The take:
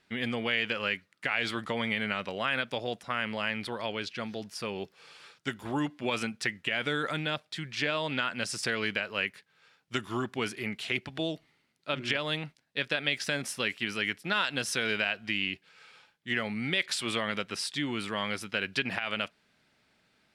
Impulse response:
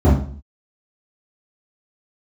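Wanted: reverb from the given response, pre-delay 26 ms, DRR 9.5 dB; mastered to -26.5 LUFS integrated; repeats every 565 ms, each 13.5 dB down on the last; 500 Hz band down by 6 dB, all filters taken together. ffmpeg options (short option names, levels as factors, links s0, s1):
-filter_complex "[0:a]equalizer=f=500:t=o:g=-7.5,aecho=1:1:565|1130:0.211|0.0444,asplit=2[s0][s1];[1:a]atrim=start_sample=2205,adelay=26[s2];[s1][s2]afir=irnorm=-1:irlink=0,volume=0.0266[s3];[s0][s3]amix=inputs=2:normalize=0,volume=1.58"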